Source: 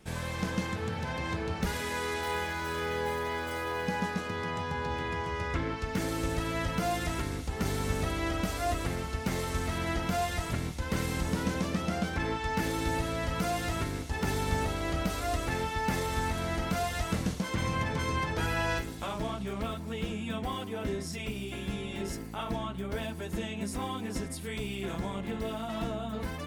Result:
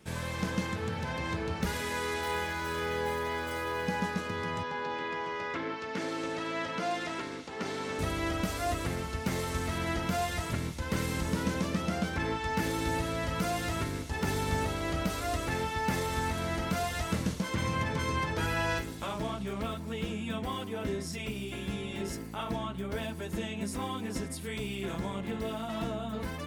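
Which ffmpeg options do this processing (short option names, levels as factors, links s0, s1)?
-filter_complex "[0:a]asettb=1/sr,asplit=3[s0][s1][s2];[s0]atrim=end=4.634[s3];[s1]atrim=start=4.63:end=7.99,asetpts=PTS-STARTPTS,afade=t=in:d=0.004:c=qsin,afade=t=out:st=3.356:d=0.004:c=qsin,highpass=270,lowpass=5300[s4];[s2]atrim=start=7.986[s5];[s3][s4]acrossfade=d=0.004:c1=hsin:c2=qsin[s6];[s6][s5]acrossfade=d=0.004:c1=qsin:c2=hsin,highpass=58,bandreject=f=740:w=15"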